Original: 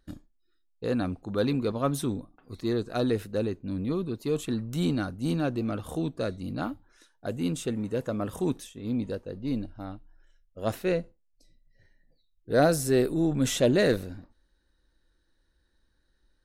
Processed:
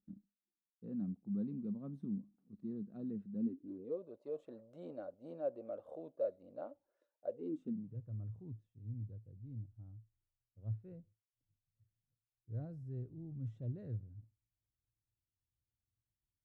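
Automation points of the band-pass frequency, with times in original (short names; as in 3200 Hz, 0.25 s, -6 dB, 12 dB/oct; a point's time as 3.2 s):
band-pass, Q 9.8
3.37 s 200 Hz
4.02 s 570 Hz
7.3 s 570 Hz
7.99 s 110 Hz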